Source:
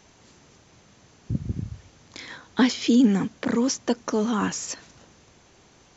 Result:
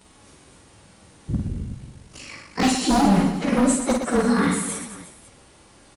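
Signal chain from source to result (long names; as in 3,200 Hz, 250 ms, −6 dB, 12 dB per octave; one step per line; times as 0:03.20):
partials spread apart or drawn together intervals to 111%
0:01.47–0:02.63: ring modulation 25 Hz
wave folding −19.5 dBFS
on a send: reverse bouncing-ball delay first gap 50 ms, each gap 1.4×, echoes 5
on the sum: level +6 dB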